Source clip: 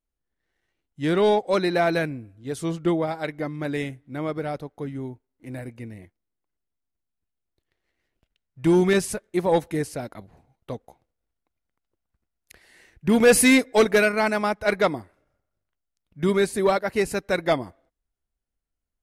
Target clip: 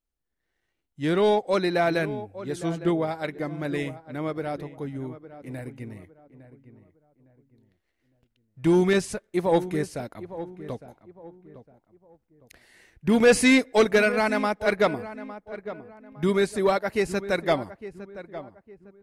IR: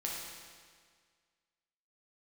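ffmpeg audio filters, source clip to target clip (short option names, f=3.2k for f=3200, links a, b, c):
-filter_complex "[0:a]asplit=2[a][b];[b]adelay=858,lowpass=f=1.5k:p=1,volume=-13.5dB,asplit=2[c][d];[d]adelay=858,lowpass=f=1.5k:p=1,volume=0.34,asplit=2[e][f];[f]adelay=858,lowpass=f=1.5k:p=1,volume=0.34[g];[a][c][e][g]amix=inputs=4:normalize=0,acrossover=split=8800[h][i];[i]acompressor=threshold=-50dB:ratio=4:attack=1:release=60[j];[h][j]amix=inputs=2:normalize=0,volume=-1.5dB"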